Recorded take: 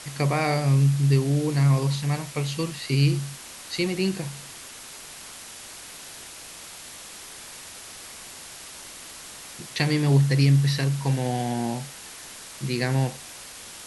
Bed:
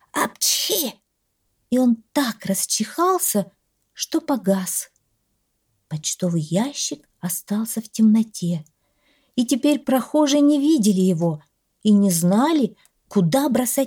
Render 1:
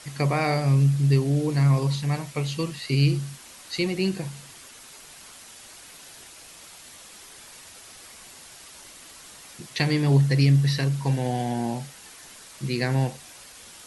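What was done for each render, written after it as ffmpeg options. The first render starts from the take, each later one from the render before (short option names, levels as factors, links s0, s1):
-af "afftdn=nr=6:nf=-42"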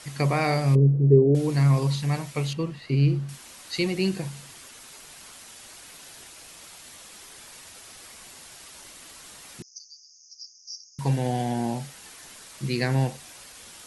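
-filter_complex "[0:a]asettb=1/sr,asplit=3[s0][s1][s2];[s0]atrim=end=0.754[s3];[s1]atrim=start=0.75:end=1.35,asetpts=PTS-STARTPTS,afade=t=in:d=0.004:c=qsin,afade=t=out:st=0.596:d=0.004:c=qsin,lowpass=f=440:t=q:w=4.4[s4];[s2]atrim=start=1.346[s5];[s3][s4]acrossfade=d=0.004:c1=hsin:c2=qsin[s6];[s6][s5]acrossfade=d=0.004:c1=qsin:c2=hsin,asettb=1/sr,asplit=3[s7][s8][s9];[s7]atrim=end=2.534[s10];[s8]atrim=start=2.53:end=3.29,asetpts=PTS-STARTPTS,afade=t=in:d=0.004:c=qsin,afade=t=out:st=0.756:d=0.004:c=qsin,lowpass=f=1200:p=1[s11];[s9]atrim=start=3.286[s12];[s10][s11]acrossfade=d=0.004:c1=hsin:c2=qsin[s13];[s13][s12]acrossfade=d=0.004:c1=qsin:c2=hsin,asettb=1/sr,asplit=3[s14][s15][s16];[s14]atrim=end=9.624[s17];[s15]atrim=start=9.62:end=10.99,asetpts=PTS-STARTPTS,afade=t=in:d=0.004:c=qsin,afade=t=out:st=1.366:d=0.004:c=qsin,asuperpass=centerf=5700:order=12:qfactor=3.2[s18];[s16]atrim=start=10.986[s19];[s17][s18]acrossfade=d=0.004:c1=hsin:c2=qsin[s20];[s20][s19]acrossfade=d=0.004:c1=qsin:c2=hsin"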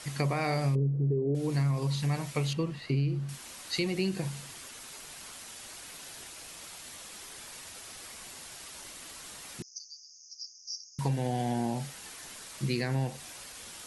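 -af "alimiter=limit=0.2:level=0:latency=1:release=425,acompressor=threshold=0.0447:ratio=3"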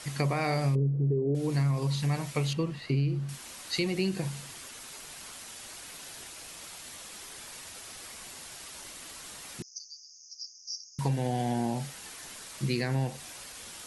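-af "volume=1.12"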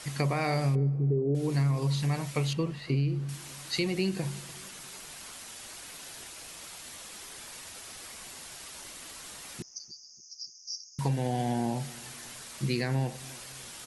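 -filter_complex "[0:a]asplit=2[s0][s1];[s1]adelay=292,lowpass=f=1000:p=1,volume=0.0944,asplit=2[s2][s3];[s3]adelay=292,lowpass=f=1000:p=1,volume=0.46,asplit=2[s4][s5];[s5]adelay=292,lowpass=f=1000:p=1,volume=0.46[s6];[s0][s2][s4][s6]amix=inputs=4:normalize=0"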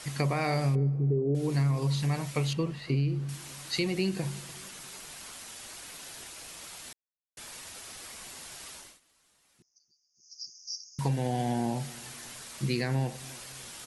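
-filter_complex "[0:a]asplit=5[s0][s1][s2][s3][s4];[s0]atrim=end=6.93,asetpts=PTS-STARTPTS,afade=t=out:st=6.926:d=0.004:c=hsin[s5];[s1]atrim=start=6.93:end=7.37,asetpts=PTS-STARTPTS,volume=0[s6];[s2]atrim=start=7.37:end=9,asetpts=PTS-STARTPTS,afade=t=in:d=0.004:c=hsin,afade=t=out:st=1.34:d=0.29:silence=0.0668344[s7];[s3]atrim=start=9:end=10.14,asetpts=PTS-STARTPTS,volume=0.0668[s8];[s4]atrim=start=10.14,asetpts=PTS-STARTPTS,afade=t=in:d=0.29:silence=0.0668344[s9];[s5][s6][s7][s8][s9]concat=n=5:v=0:a=1"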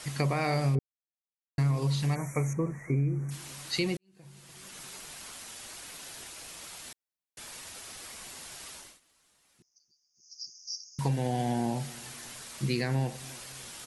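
-filter_complex "[0:a]asplit=3[s0][s1][s2];[s0]afade=t=out:st=2.14:d=0.02[s3];[s1]asuperstop=centerf=3700:order=20:qfactor=1.1,afade=t=in:st=2.14:d=0.02,afade=t=out:st=3.3:d=0.02[s4];[s2]afade=t=in:st=3.3:d=0.02[s5];[s3][s4][s5]amix=inputs=3:normalize=0,asplit=4[s6][s7][s8][s9];[s6]atrim=end=0.79,asetpts=PTS-STARTPTS,afade=t=out:st=0.786:d=0.004:c=hsin[s10];[s7]atrim=start=0.79:end=1.58,asetpts=PTS-STARTPTS,volume=0[s11];[s8]atrim=start=1.58:end=3.97,asetpts=PTS-STARTPTS,afade=t=in:d=0.004:c=hsin,afade=t=out:st=2.386:d=0.004:c=hsin[s12];[s9]atrim=start=3.97,asetpts=PTS-STARTPTS,afade=t=in:d=0.83:c=qua[s13];[s10][s11][s12][s13]concat=n=4:v=0:a=1"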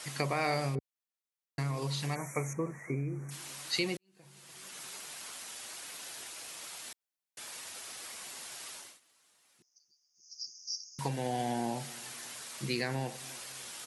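-af "highpass=69,lowshelf=f=220:g=-11.5"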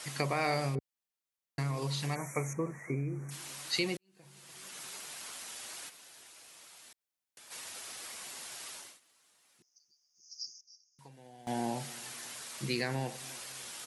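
-filter_complex "[0:a]asplit=3[s0][s1][s2];[s0]afade=t=out:st=5.88:d=0.02[s3];[s1]acompressor=threshold=0.00224:ratio=4:attack=3.2:release=140:knee=1:detection=peak,afade=t=in:st=5.88:d=0.02,afade=t=out:st=7.5:d=0.02[s4];[s2]afade=t=in:st=7.5:d=0.02[s5];[s3][s4][s5]amix=inputs=3:normalize=0,asplit=3[s6][s7][s8];[s6]atrim=end=10.61,asetpts=PTS-STARTPTS,afade=t=out:st=10.41:d=0.2:c=log:silence=0.0944061[s9];[s7]atrim=start=10.61:end=11.47,asetpts=PTS-STARTPTS,volume=0.0944[s10];[s8]atrim=start=11.47,asetpts=PTS-STARTPTS,afade=t=in:d=0.2:c=log:silence=0.0944061[s11];[s9][s10][s11]concat=n=3:v=0:a=1"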